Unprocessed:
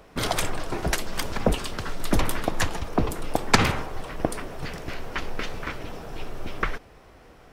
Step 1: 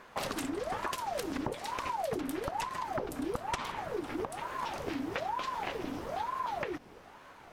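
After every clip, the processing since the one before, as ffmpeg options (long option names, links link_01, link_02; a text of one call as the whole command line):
ffmpeg -i in.wav -af "acompressor=threshold=-29dB:ratio=16,aeval=exprs='val(0)*sin(2*PI*660*n/s+660*0.6/1.1*sin(2*PI*1.1*n/s))':channel_layout=same" out.wav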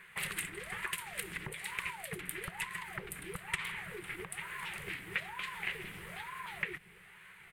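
ffmpeg -i in.wav -af "firequalizer=gain_entry='entry(110,0);entry(180,9);entry(260,-24);entry(370,-1);entry(590,-13);entry(2000,15);entry(5600,-8);entry(8700,14);entry(14000,10)':delay=0.05:min_phase=1,volume=-6.5dB" out.wav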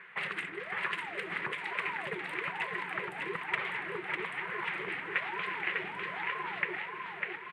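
ffmpeg -i in.wav -filter_complex "[0:a]highpass=260,lowpass=2200,asplit=2[link_01][link_02];[link_02]aecho=0:1:600|1140|1626|2063|2457:0.631|0.398|0.251|0.158|0.1[link_03];[link_01][link_03]amix=inputs=2:normalize=0,volume=6dB" out.wav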